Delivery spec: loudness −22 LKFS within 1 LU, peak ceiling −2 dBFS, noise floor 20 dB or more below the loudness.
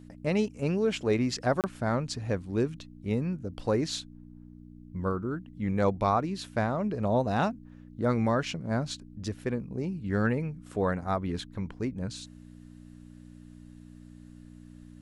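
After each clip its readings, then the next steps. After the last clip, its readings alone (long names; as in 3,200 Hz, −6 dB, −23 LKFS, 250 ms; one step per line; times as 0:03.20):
number of dropouts 1; longest dropout 28 ms; mains hum 60 Hz; hum harmonics up to 300 Hz; level of the hum −49 dBFS; integrated loudness −30.5 LKFS; sample peak −13.5 dBFS; target loudness −22.0 LKFS
→ repair the gap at 0:01.61, 28 ms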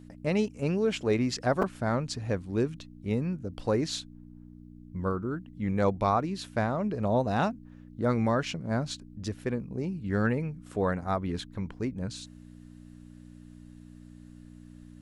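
number of dropouts 0; mains hum 60 Hz; hum harmonics up to 300 Hz; level of the hum −48 dBFS
→ hum removal 60 Hz, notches 5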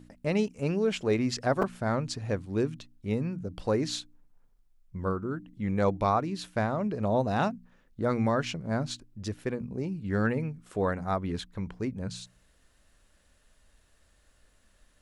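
mains hum none found; integrated loudness −30.5 LKFS; sample peak −13.0 dBFS; target loudness −22.0 LKFS
→ level +8.5 dB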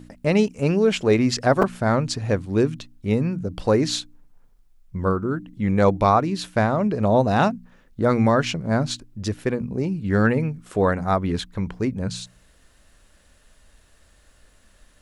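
integrated loudness −22.0 LKFS; sample peak −4.5 dBFS; background noise floor −57 dBFS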